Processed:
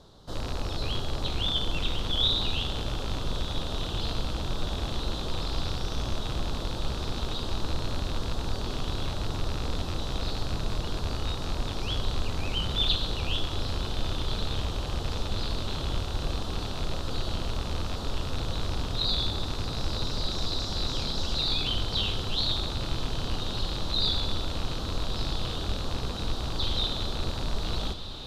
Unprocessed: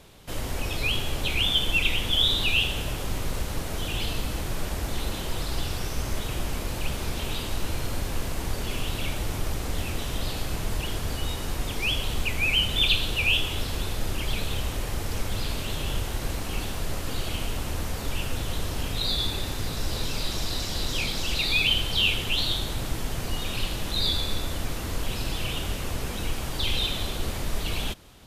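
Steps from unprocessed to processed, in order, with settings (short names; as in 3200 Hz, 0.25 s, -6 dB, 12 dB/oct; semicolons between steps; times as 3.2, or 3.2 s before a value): rattling part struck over -31 dBFS, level -16 dBFS; EQ curve 1300 Hz 0 dB, 2400 Hz -19 dB, 3900 Hz +3 dB, 12000 Hz -17 dB; diffused feedback echo 1.354 s, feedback 79%, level -12.5 dB; gain -1.5 dB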